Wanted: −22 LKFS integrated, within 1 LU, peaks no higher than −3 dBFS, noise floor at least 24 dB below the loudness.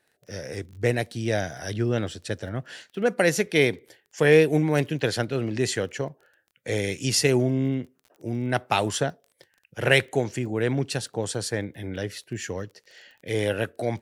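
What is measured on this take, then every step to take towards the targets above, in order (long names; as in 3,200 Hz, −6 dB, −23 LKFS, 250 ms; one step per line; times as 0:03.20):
crackle rate 24 per second; integrated loudness −25.5 LKFS; sample peak −5.0 dBFS; target loudness −22.0 LKFS
→ click removal
level +3.5 dB
brickwall limiter −3 dBFS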